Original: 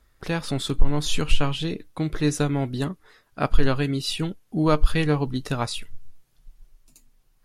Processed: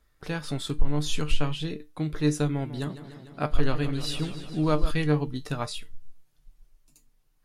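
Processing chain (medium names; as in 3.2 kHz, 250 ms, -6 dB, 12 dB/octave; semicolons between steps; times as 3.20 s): feedback comb 150 Hz, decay 0.19 s, harmonics all, mix 60%; 2.50–4.91 s: modulated delay 149 ms, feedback 75%, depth 95 cents, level -12.5 dB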